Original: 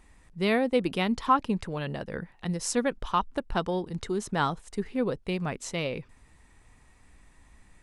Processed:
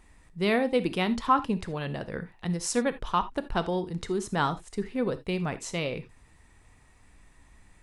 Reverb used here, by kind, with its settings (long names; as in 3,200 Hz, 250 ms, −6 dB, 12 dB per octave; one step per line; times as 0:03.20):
reverb whose tail is shaped and stops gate 100 ms flat, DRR 11.5 dB